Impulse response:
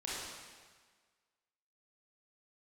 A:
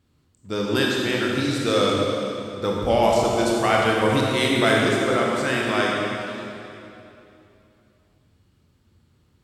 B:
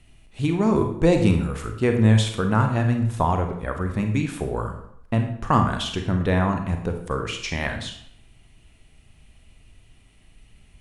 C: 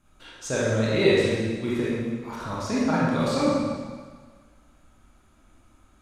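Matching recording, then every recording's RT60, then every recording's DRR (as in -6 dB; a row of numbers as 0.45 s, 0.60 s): C; 2.9 s, 0.70 s, 1.5 s; -3.0 dB, 4.5 dB, -7.5 dB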